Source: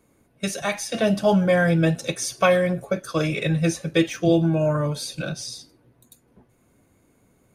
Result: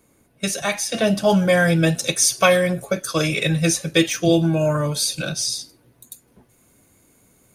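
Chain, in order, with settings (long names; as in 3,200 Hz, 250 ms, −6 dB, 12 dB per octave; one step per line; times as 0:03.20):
high-shelf EQ 3,200 Hz +6 dB, from 0:01.30 +12 dB
level +1.5 dB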